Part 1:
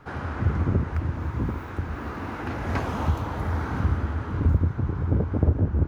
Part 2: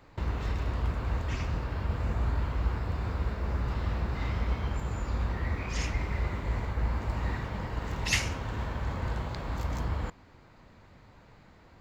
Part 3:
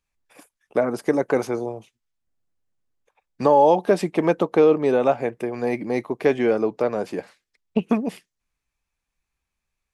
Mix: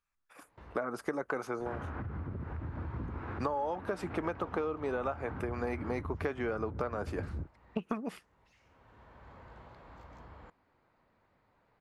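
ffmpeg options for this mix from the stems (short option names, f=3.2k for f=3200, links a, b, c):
-filter_complex "[0:a]lowpass=2.3k,acompressor=threshold=-33dB:ratio=4,alimiter=level_in=8.5dB:limit=-24dB:level=0:latency=1:release=106,volume=-8.5dB,adelay=1600,volume=1dB[a];[1:a]alimiter=limit=-23dB:level=0:latency=1:release=273,asplit=2[b][c];[c]highpass=f=720:p=1,volume=14dB,asoftclip=type=tanh:threshold=-23dB[d];[b][d]amix=inputs=2:normalize=0,lowpass=f=1.1k:p=1,volume=-6dB,adelay=400,volume=-17dB[e];[2:a]equalizer=f=1.3k:w=1.9:g=13,volume=-9dB,asplit=2[f][g];[g]apad=whole_len=538439[h];[e][h]sidechaincompress=threshold=-42dB:ratio=16:attack=9.1:release=1020[i];[a][i][f]amix=inputs=3:normalize=0,acompressor=threshold=-30dB:ratio=10"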